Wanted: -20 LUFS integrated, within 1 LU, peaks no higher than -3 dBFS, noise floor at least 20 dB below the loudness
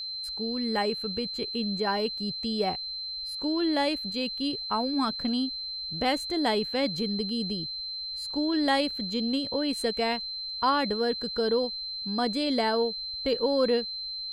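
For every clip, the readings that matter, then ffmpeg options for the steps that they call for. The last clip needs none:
steady tone 4100 Hz; tone level -33 dBFS; loudness -28.0 LUFS; peak -13.0 dBFS; loudness target -20.0 LUFS
-> -af "bandreject=f=4.1k:w=30"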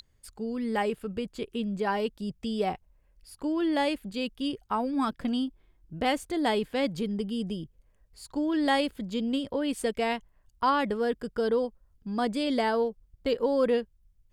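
steady tone none; loudness -29.5 LUFS; peak -13.5 dBFS; loudness target -20.0 LUFS
-> -af "volume=9.5dB"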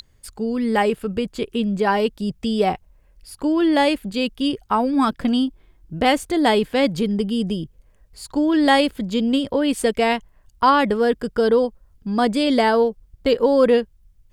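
loudness -20.0 LUFS; peak -4.0 dBFS; noise floor -56 dBFS

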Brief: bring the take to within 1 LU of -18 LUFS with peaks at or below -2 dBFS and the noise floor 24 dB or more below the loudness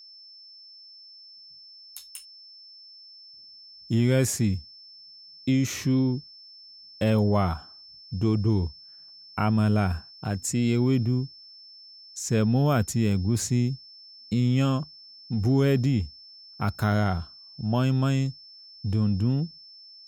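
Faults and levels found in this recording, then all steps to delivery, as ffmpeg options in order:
steady tone 5300 Hz; tone level -46 dBFS; loudness -25.5 LUFS; peak -10.5 dBFS; loudness target -18.0 LUFS
-> -af "bandreject=f=5.3k:w=30"
-af "volume=7.5dB"

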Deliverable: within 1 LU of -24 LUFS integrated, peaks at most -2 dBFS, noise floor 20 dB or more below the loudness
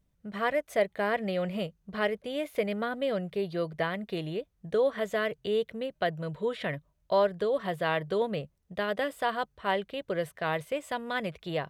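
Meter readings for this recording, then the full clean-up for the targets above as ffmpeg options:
loudness -31.0 LUFS; peak -14.5 dBFS; loudness target -24.0 LUFS
-> -af "volume=7dB"

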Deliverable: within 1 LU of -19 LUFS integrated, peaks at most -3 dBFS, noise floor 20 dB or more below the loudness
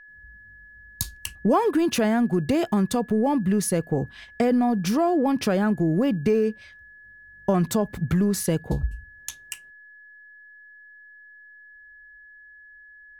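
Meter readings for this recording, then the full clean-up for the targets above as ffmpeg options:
steady tone 1700 Hz; tone level -46 dBFS; loudness -23.5 LUFS; peak -9.0 dBFS; loudness target -19.0 LUFS
-> -af "bandreject=f=1.7k:w=30"
-af "volume=4.5dB"

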